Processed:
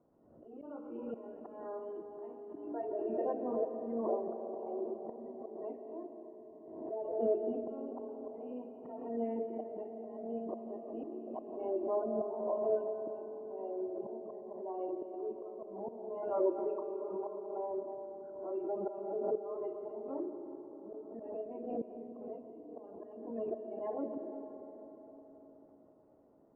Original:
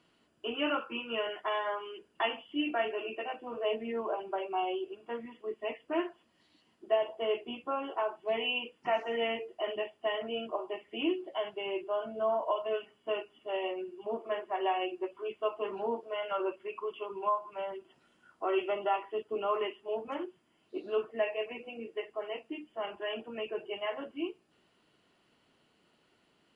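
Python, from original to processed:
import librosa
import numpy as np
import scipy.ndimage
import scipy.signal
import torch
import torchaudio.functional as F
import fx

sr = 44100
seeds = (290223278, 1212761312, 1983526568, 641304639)

p1 = fx.spec_quant(x, sr, step_db=30)
p2 = fx.peak_eq(p1, sr, hz=270.0, db=6.5, octaves=0.74)
p3 = fx.hum_notches(p2, sr, base_hz=60, count=8)
p4 = fx.rider(p3, sr, range_db=10, speed_s=0.5)
p5 = p3 + (p4 * 10.0 ** (0.0 / 20.0))
p6 = fx.auto_swell(p5, sr, attack_ms=662.0)
p7 = fx.ladder_lowpass(p6, sr, hz=820.0, resonance_pct=25)
p8 = fx.rev_freeverb(p7, sr, rt60_s=4.8, hf_ratio=0.4, predelay_ms=95, drr_db=6.0)
p9 = fx.pre_swell(p8, sr, db_per_s=52.0)
y = p9 * 10.0 ** (1.5 / 20.0)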